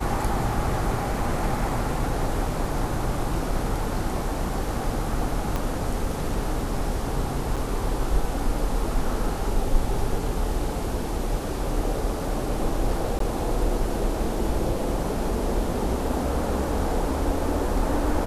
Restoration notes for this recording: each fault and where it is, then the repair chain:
5.56 pop -13 dBFS
7.56–7.57 gap 6.6 ms
13.19–13.2 gap 13 ms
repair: de-click; interpolate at 7.56, 6.6 ms; interpolate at 13.19, 13 ms

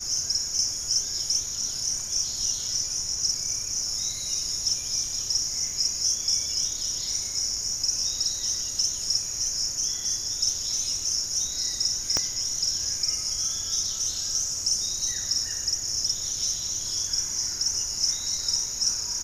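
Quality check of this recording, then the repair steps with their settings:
12.17 pop -9 dBFS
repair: de-click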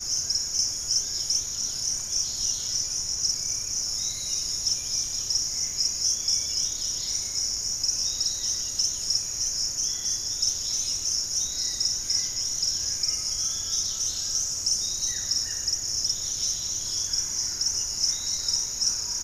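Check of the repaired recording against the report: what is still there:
12.17 pop

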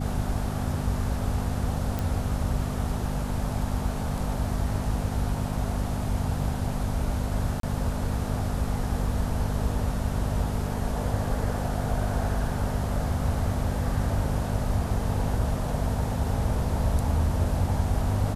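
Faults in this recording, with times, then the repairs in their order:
hum 50 Hz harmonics 5 -31 dBFS
1.99 pop
7.6–7.63 gap 33 ms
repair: de-click; de-hum 50 Hz, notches 5; interpolate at 7.6, 33 ms

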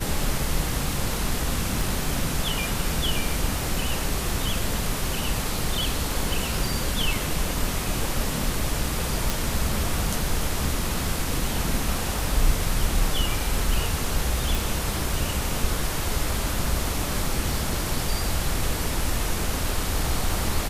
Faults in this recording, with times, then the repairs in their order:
1.81 pop
9.3 pop
14.55 pop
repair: de-click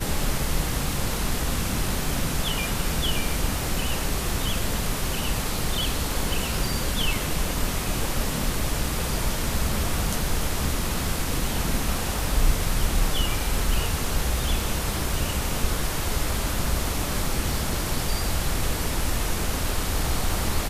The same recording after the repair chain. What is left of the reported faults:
none

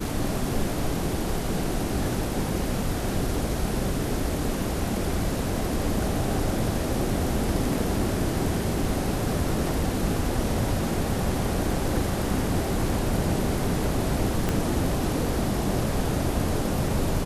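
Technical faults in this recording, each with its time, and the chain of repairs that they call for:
14.49 pop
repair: de-click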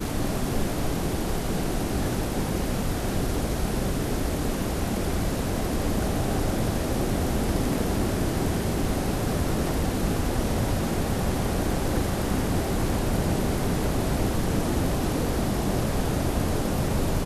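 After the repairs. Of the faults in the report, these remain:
14.49 pop

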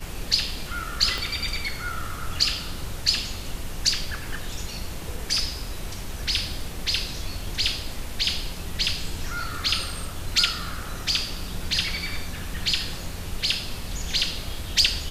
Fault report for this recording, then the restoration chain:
1.18 pop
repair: de-click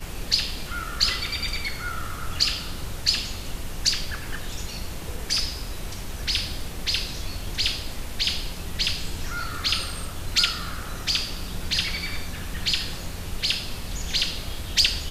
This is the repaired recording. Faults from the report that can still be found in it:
1.18 pop

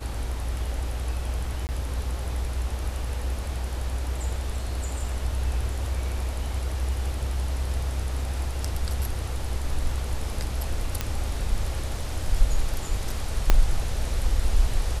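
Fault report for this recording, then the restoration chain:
1.67–1.69 gap 19 ms
11.01 pop -10 dBFS
13.5 pop -4 dBFS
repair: de-click; interpolate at 1.67, 19 ms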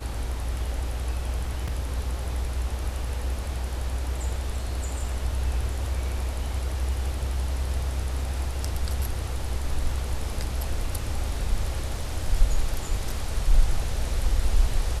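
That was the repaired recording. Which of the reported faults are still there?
13.5 pop

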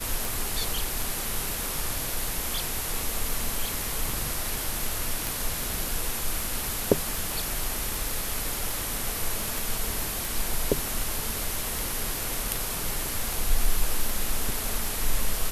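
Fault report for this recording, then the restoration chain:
tick 78 rpm
5.27 pop
9.58 pop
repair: de-click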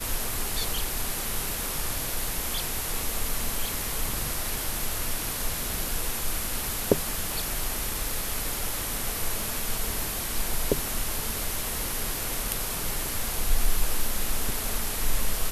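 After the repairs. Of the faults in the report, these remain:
9.58 pop

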